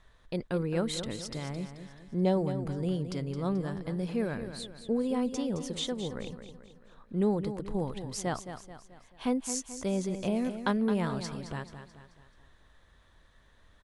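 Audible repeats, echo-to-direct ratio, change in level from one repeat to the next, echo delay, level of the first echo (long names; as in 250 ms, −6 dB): 4, −9.0 dB, −6.5 dB, 217 ms, −10.0 dB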